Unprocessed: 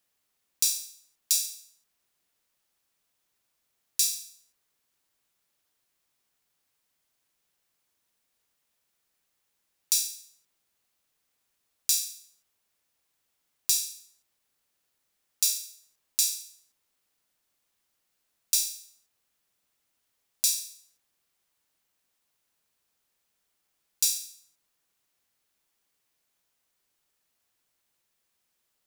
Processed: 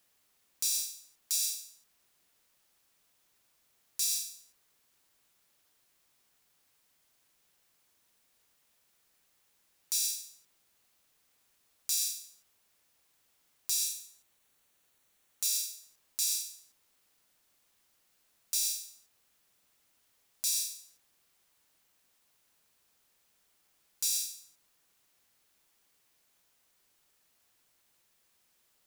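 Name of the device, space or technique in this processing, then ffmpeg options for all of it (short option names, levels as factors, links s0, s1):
de-esser from a sidechain: -filter_complex "[0:a]asettb=1/sr,asplit=3[s0][s1][s2];[s0]atrim=end=13.854[s3];[s1]atrim=start=13.85:end=15.46,asetpts=PTS-STARTPTS,afade=t=in:d=0.004:c=qsin,afade=t=out:st=1.606:d=0.004:c=qsin,bandreject=f=5000:w=7.7[s4];[s2]atrim=start=15.456[s5];[s3][s4]acrossfade=d=0.004:c1=hsin:c2=qsin[s6];[s6][s5]acrossfade=d=0.004:c1=qsin:c2=hsin,asplit=2[s7][s8];[s8]highpass=f=5600:p=1,apad=whole_len=1273055[s9];[s7][s9]sidechaincompress=threshold=0.0355:ratio=8:attack=0.66:release=51,volume=1.88"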